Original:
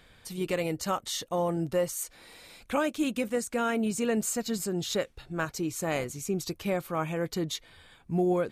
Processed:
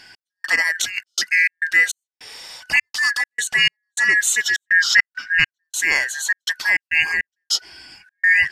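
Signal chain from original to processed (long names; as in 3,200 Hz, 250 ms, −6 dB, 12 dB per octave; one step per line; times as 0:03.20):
band-splitting scrambler in four parts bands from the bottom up 2143
0:02.73–0:03.36: transient designer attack −7 dB, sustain +3 dB
0:04.67–0:05.64: graphic EQ with 15 bands 400 Hz −11 dB, 1,600 Hz +7 dB, 10,000 Hz −9 dB
gate pattern "x..xxxx.xx.x" 102 BPM −60 dB
0:00.72–0:01.30: compressor whose output falls as the input rises −38 dBFS, ratio −1
parametric band 4,300 Hz +13 dB 2.5 octaves
level +4 dB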